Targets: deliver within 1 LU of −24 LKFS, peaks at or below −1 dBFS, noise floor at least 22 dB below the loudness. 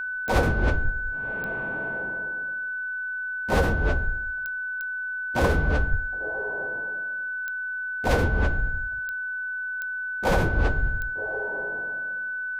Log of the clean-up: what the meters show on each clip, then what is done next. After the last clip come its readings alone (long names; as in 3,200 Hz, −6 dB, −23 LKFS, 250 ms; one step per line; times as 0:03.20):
number of clicks 8; interfering tone 1,500 Hz; level of the tone −28 dBFS; integrated loudness −27.0 LKFS; sample peak −8.5 dBFS; target loudness −24.0 LKFS
→ click removal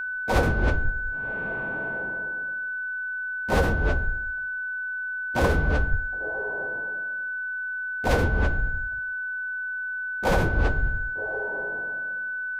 number of clicks 0; interfering tone 1,500 Hz; level of the tone −28 dBFS
→ notch filter 1,500 Hz, Q 30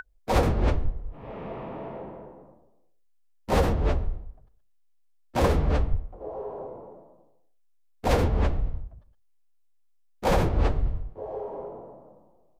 interfering tone none found; integrated loudness −28.0 LKFS; sample peak −9.5 dBFS; target loudness −24.0 LKFS
→ level +4 dB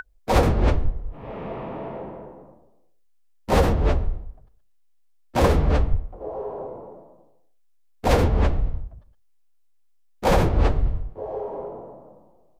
integrated loudness −24.0 LKFS; sample peak −5.5 dBFS; background noise floor −58 dBFS